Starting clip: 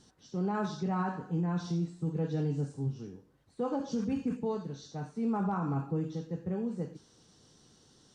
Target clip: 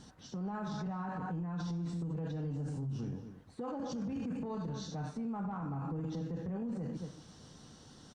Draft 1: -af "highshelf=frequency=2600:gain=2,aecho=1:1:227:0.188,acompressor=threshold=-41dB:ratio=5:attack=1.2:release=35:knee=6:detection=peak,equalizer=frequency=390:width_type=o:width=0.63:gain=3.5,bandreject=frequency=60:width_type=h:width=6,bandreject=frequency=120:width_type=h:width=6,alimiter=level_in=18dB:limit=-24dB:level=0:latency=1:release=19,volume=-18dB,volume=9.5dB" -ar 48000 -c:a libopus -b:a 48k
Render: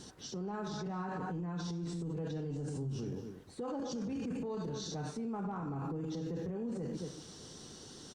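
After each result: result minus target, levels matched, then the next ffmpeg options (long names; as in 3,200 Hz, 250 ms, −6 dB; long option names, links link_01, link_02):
4,000 Hz band +5.5 dB; 500 Hz band +4.5 dB
-af "highshelf=frequency=2600:gain=-8,aecho=1:1:227:0.188,acompressor=threshold=-41dB:ratio=5:attack=1.2:release=35:knee=6:detection=peak,equalizer=frequency=390:width_type=o:width=0.63:gain=3.5,bandreject=frequency=60:width_type=h:width=6,bandreject=frequency=120:width_type=h:width=6,alimiter=level_in=18dB:limit=-24dB:level=0:latency=1:release=19,volume=-18dB,volume=9.5dB" -ar 48000 -c:a libopus -b:a 48k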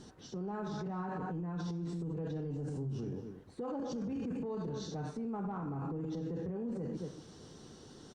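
500 Hz band +4.0 dB
-af "highshelf=frequency=2600:gain=-8,aecho=1:1:227:0.188,acompressor=threshold=-41dB:ratio=5:attack=1.2:release=35:knee=6:detection=peak,equalizer=frequency=390:width_type=o:width=0.63:gain=-7,bandreject=frequency=60:width_type=h:width=6,bandreject=frequency=120:width_type=h:width=6,alimiter=level_in=18dB:limit=-24dB:level=0:latency=1:release=19,volume=-18dB,volume=9.5dB" -ar 48000 -c:a libopus -b:a 48k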